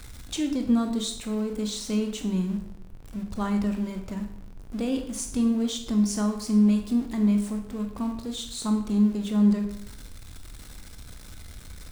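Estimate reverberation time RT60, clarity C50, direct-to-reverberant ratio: 0.70 s, 8.0 dB, 5.0 dB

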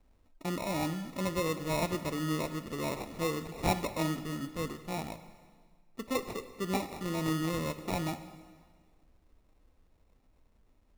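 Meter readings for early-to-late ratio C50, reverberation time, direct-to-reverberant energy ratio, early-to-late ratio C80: 12.0 dB, 1.7 s, 10.5 dB, 13.0 dB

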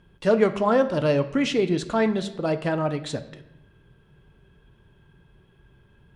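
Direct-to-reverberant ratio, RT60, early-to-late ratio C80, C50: 9.0 dB, 0.85 s, 16.0 dB, 13.5 dB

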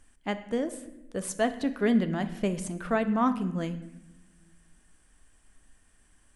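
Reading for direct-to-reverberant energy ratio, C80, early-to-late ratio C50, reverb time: 10.0 dB, 15.0 dB, 13.0 dB, 0.95 s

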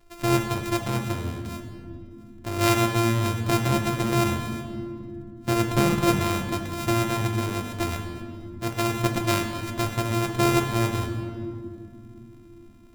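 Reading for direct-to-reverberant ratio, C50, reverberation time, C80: 3.5 dB, 6.0 dB, not exponential, 7.0 dB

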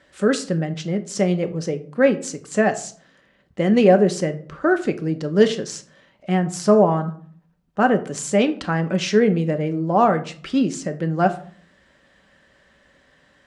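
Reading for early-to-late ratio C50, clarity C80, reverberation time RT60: 15.0 dB, 19.5 dB, 0.50 s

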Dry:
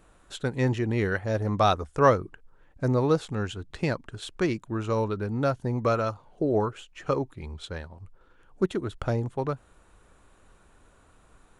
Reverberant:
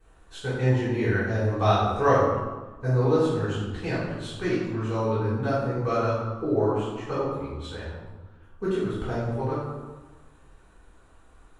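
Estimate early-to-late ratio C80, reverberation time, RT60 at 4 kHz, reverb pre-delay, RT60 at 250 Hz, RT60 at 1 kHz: 2.5 dB, 1.3 s, 0.80 s, 3 ms, 1.4 s, 1.3 s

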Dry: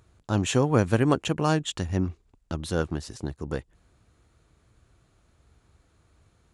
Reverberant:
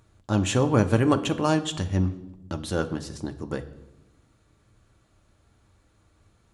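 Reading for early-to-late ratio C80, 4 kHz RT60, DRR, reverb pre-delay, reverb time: 17.0 dB, 0.80 s, 6.5 dB, 4 ms, 1.0 s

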